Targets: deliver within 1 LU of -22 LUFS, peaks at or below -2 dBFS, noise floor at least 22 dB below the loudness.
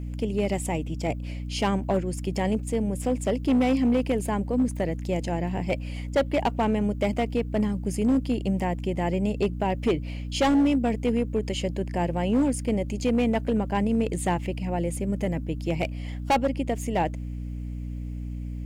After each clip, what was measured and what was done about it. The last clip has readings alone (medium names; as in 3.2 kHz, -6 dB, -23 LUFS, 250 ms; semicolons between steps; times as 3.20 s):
clipped samples 1.3%; clipping level -17.0 dBFS; hum 60 Hz; highest harmonic 300 Hz; hum level -31 dBFS; loudness -26.5 LUFS; peak level -17.0 dBFS; loudness target -22.0 LUFS
-> clip repair -17 dBFS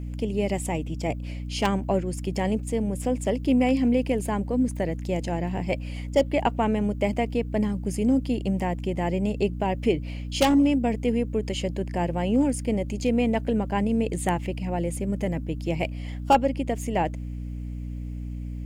clipped samples 0.0%; hum 60 Hz; highest harmonic 300 Hz; hum level -30 dBFS
-> de-hum 60 Hz, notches 5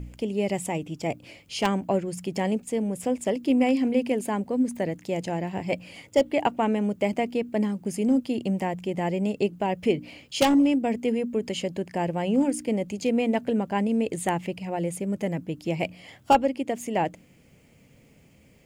hum not found; loudness -26.5 LUFS; peak level -7.5 dBFS; loudness target -22.0 LUFS
-> trim +4.5 dB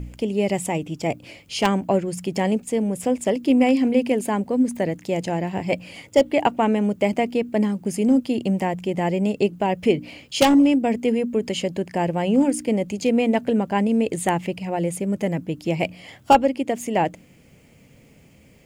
loudness -22.0 LUFS; peak level -3.0 dBFS; noise floor -52 dBFS